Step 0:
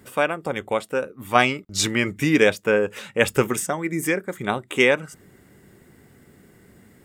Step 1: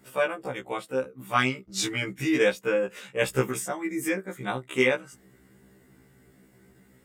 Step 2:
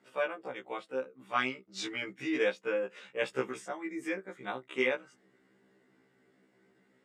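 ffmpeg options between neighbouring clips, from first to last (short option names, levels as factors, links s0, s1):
-af "afftfilt=real='re*1.73*eq(mod(b,3),0)':imag='im*1.73*eq(mod(b,3),0)':win_size=2048:overlap=0.75,volume=0.668"
-af "highpass=260,lowpass=4600,volume=0.473"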